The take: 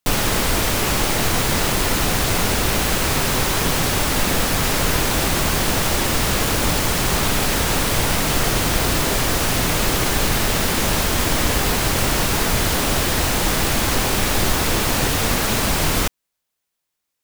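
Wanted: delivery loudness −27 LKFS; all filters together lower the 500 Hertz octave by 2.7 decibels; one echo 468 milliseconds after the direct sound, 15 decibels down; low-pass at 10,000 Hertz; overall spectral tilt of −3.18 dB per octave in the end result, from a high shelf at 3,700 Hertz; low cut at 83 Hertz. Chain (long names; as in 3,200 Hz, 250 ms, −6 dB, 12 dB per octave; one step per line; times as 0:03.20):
high-pass filter 83 Hz
low-pass filter 10,000 Hz
parametric band 500 Hz −3.5 dB
high-shelf EQ 3,700 Hz +3.5 dB
single-tap delay 468 ms −15 dB
level −8.5 dB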